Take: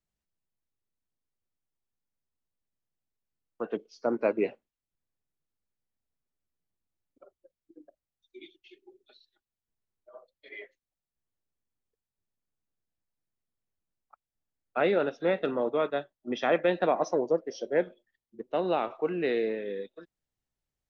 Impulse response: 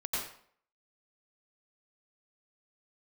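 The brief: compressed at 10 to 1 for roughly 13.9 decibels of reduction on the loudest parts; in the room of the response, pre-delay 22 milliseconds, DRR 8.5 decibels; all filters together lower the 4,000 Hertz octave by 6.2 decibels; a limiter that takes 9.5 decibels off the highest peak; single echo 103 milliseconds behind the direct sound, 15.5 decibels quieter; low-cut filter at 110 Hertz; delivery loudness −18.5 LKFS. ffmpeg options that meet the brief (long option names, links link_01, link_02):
-filter_complex "[0:a]highpass=110,equalizer=frequency=4000:width_type=o:gain=-8,acompressor=threshold=-35dB:ratio=10,alimiter=level_in=8dB:limit=-24dB:level=0:latency=1,volume=-8dB,aecho=1:1:103:0.168,asplit=2[link_01][link_02];[1:a]atrim=start_sample=2205,adelay=22[link_03];[link_02][link_03]afir=irnorm=-1:irlink=0,volume=-13.5dB[link_04];[link_01][link_04]amix=inputs=2:normalize=0,volume=25.5dB"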